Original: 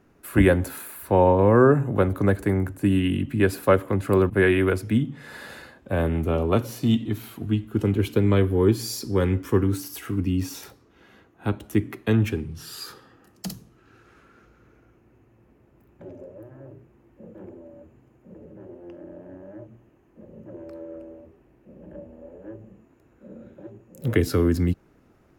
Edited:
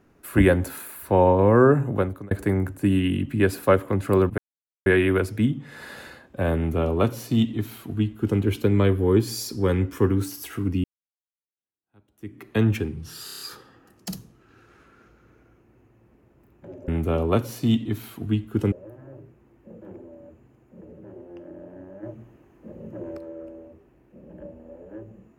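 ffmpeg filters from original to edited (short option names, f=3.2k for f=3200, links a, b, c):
-filter_complex "[0:a]asplit=13[a][b][c][d][e][f][g][h][i][j][k][l][m];[a]atrim=end=2.31,asetpts=PTS-STARTPTS,afade=t=out:st=1.9:d=0.41[n];[b]atrim=start=2.31:end=4.38,asetpts=PTS-STARTPTS,afade=t=in:d=0.004:c=hsin,afade=t=out:st=2.066:d=0.004:c=hsin,apad=pad_dur=0.48[o];[c]atrim=start=4.38:end=10.36,asetpts=PTS-STARTPTS,afade=t=in:d=0.004:c=hsin,afade=t=out:st=5.976:d=0.004:c=hsin[p];[d]atrim=start=10.36:end=12.802,asetpts=PTS-STARTPTS,afade=t=in:d=1.68:c=exp[q];[e]atrim=start=12.768:end=12.802[r];[f]atrim=start=12.768:end=12.802[s];[g]atrim=start=12.768:end=12.802[t];[h]atrim=start=12.768:end=12.802[u];[i]atrim=start=12.768:end=16.252[v];[j]atrim=start=6.078:end=7.922[w];[k]atrim=start=16.248:end=19.562[x];[l]atrim=start=19.558:end=20.712,asetpts=PTS-STARTPTS,volume=5dB[y];[m]atrim=start=20.708[z];[n][o][p][q]concat=n=4:v=0:a=1[aa];[aa][r]acrossfade=d=0.004:c1=hsin:c2=hsin[ab];[ab][s]acrossfade=d=0.004:c1=hsin:c2=hsin[ac];[ac][t]acrossfade=d=0.004:c1=hsin:c2=hsin[ad];[ad][u]acrossfade=d=0.004:c1=hsin:c2=hsin[ae];[ae][v]acrossfade=d=0.004:c1=hsin:c2=hsin[af];[af][w]acrossfade=d=0.004:c1=hsin:c2=hsin[ag];[ag][x]acrossfade=d=0.004:c1=hsin:c2=hsin[ah];[ah][y]acrossfade=d=0.004:c1=hsin:c2=hsin[ai];[ai][z]acrossfade=d=0.004:c1=hsin:c2=hsin"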